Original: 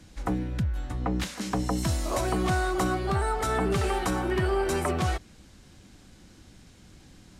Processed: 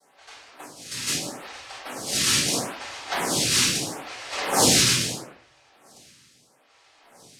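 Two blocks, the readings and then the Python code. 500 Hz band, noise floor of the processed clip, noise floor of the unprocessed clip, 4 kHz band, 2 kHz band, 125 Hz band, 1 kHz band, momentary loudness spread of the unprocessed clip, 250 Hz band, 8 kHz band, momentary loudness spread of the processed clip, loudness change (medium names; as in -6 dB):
-3.5 dB, -60 dBFS, -53 dBFS, +15.5 dB, +4.5 dB, -5.5 dB, -1.5 dB, 5 LU, -2.5 dB, +16.5 dB, 19 LU, +6.5 dB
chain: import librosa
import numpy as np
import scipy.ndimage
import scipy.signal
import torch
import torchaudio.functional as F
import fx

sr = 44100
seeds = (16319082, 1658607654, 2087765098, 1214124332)

y = fx.high_shelf(x, sr, hz=4300.0, db=-10.5)
y = fx.filter_lfo_bandpass(y, sr, shape='sine', hz=0.8, low_hz=350.0, high_hz=5400.0, q=2.0)
y = fx.noise_vocoder(y, sr, seeds[0], bands=1)
y = fx.room_shoebox(y, sr, seeds[1], volume_m3=130.0, walls='mixed', distance_m=5.3)
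y = fx.stagger_phaser(y, sr, hz=0.77)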